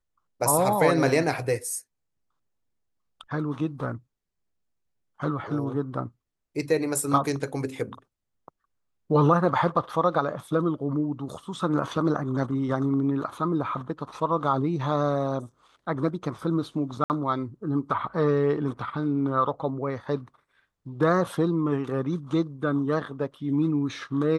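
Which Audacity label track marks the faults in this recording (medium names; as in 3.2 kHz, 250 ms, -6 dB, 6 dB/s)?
17.040000	17.100000	dropout 59 ms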